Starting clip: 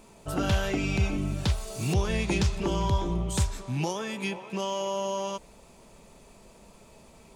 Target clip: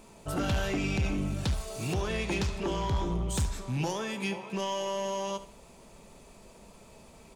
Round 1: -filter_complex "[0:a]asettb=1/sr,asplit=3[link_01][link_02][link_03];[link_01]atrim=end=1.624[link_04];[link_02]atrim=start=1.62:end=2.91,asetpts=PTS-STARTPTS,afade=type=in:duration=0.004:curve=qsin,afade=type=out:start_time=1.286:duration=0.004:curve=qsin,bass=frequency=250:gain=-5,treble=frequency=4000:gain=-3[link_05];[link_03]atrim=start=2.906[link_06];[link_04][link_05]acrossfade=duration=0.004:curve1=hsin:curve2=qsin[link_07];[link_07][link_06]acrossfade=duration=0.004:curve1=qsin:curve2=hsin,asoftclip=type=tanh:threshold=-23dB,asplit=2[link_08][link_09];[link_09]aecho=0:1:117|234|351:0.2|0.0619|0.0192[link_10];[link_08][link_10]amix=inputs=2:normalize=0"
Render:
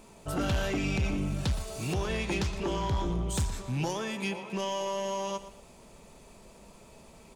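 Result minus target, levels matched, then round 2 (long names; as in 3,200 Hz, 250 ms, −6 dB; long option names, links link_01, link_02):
echo 46 ms late
-filter_complex "[0:a]asettb=1/sr,asplit=3[link_01][link_02][link_03];[link_01]atrim=end=1.624[link_04];[link_02]atrim=start=1.62:end=2.91,asetpts=PTS-STARTPTS,afade=type=in:duration=0.004:curve=qsin,afade=type=out:start_time=1.286:duration=0.004:curve=qsin,bass=frequency=250:gain=-5,treble=frequency=4000:gain=-3[link_05];[link_03]atrim=start=2.906[link_06];[link_04][link_05]acrossfade=duration=0.004:curve1=hsin:curve2=qsin[link_07];[link_07][link_06]acrossfade=duration=0.004:curve1=qsin:curve2=hsin,asoftclip=type=tanh:threshold=-23dB,asplit=2[link_08][link_09];[link_09]aecho=0:1:71|142|213:0.2|0.0619|0.0192[link_10];[link_08][link_10]amix=inputs=2:normalize=0"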